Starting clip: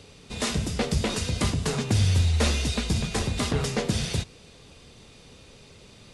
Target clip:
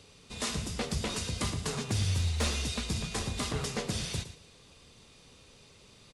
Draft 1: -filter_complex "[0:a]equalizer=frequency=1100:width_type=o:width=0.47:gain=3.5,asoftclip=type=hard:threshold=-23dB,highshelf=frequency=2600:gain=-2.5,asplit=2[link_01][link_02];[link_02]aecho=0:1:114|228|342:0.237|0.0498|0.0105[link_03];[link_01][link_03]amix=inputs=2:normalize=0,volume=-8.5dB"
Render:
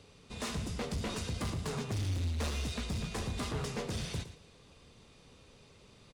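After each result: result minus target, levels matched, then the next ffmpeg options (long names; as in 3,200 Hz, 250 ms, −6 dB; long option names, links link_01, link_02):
hard clipping: distortion +26 dB; 4,000 Hz band −2.5 dB
-filter_complex "[0:a]equalizer=frequency=1100:width_type=o:width=0.47:gain=3.5,asoftclip=type=hard:threshold=-14dB,highshelf=frequency=2600:gain=-2.5,asplit=2[link_01][link_02];[link_02]aecho=0:1:114|228|342:0.237|0.0498|0.0105[link_03];[link_01][link_03]amix=inputs=2:normalize=0,volume=-8.5dB"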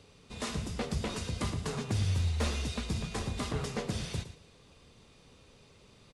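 4,000 Hz band −3.5 dB
-filter_complex "[0:a]equalizer=frequency=1100:width_type=o:width=0.47:gain=3.5,asoftclip=type=hard:threshold=-14dB,highshelf=frequency=2600:gain=5,asplit=2[link_01][link_02];[link_02]aecho=0:1:114|228|342:0.237|0.0498|0.0105[link_03];[link_01][link_03]amix=inputs=2:normalize=0,volume=-8.5dB"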